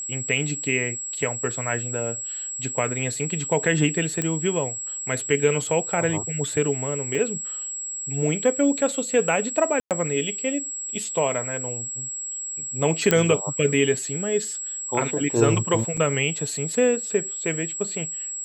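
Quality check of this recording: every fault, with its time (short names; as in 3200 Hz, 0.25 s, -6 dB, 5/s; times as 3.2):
tone 7700 Hz -29 dBFS
4.22 pop -10 dBFS
7.15 gap 3.4 ms
9.8–9.91 gap 0.108 s
13.11 pop -3 dBFS
15.97 gap 4.7 ms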